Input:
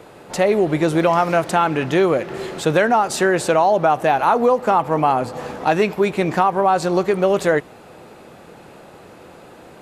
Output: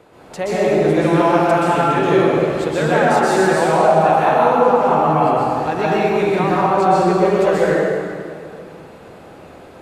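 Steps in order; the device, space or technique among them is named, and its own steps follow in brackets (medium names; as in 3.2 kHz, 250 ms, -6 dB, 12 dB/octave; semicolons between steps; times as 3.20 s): swimming-pool hall (reverberation RT60 2.3 s, pre-delay 118 ms, DRR -8.5 dB; treble shelf 5.2 kHz -4.5 dB); trim -6.5 dB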